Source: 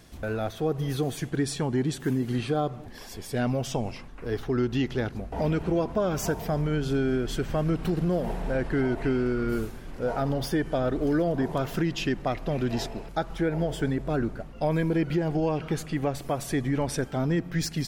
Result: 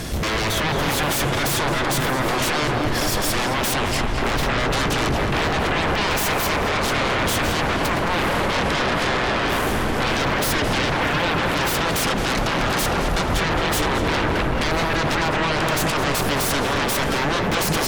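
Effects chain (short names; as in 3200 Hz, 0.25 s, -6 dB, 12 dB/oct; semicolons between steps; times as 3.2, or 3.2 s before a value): limiter -26.5 dBFS, peak gain reduction 11 dB; sine folder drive 14 dB, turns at -26.5 dBFS; darkening echo 0.218 s, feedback 78%, low-pass 3700 Hz, level -5 dB; gain +6.5 dB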